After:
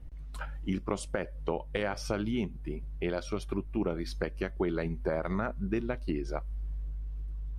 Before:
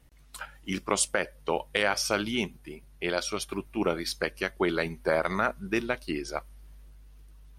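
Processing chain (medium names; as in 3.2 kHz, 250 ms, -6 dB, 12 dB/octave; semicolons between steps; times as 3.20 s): tilt EQ -3.5 dB/octave; compression 2.5:1, threshold -31 dBFS, peak gain reduction 10 dB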